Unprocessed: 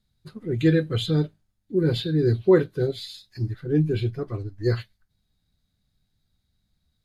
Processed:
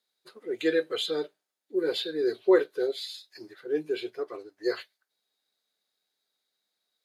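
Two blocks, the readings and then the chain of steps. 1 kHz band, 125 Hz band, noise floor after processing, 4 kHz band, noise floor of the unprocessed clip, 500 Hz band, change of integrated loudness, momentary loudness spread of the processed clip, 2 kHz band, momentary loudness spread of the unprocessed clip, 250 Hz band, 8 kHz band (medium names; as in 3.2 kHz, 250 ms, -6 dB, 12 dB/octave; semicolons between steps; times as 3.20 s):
-1.0 dB, under -30 dB, -85 dBFS, 0.0 dB, -75 dBFS, -2.0 dB, -5.0 dB, 16 LU, -0.5 dB, 12 LU, -8.0 dB, no reading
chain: Chebyshev high-pass 420 Hz, order 3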